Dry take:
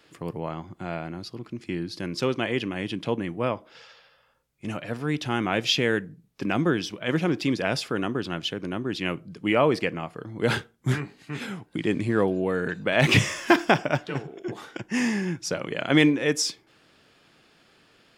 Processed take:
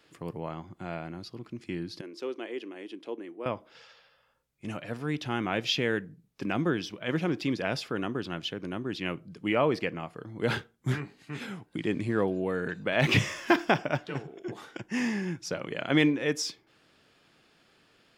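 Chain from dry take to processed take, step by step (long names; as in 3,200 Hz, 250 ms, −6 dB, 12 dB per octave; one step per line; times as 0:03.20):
0:02.01–0:03.46: four-pole ladder high-pass 290 Hz, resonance 50%
dynamic equaliser 8,800 Hz, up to −6 dB, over −49 dBFS, Q 1.2
level −4.5 dB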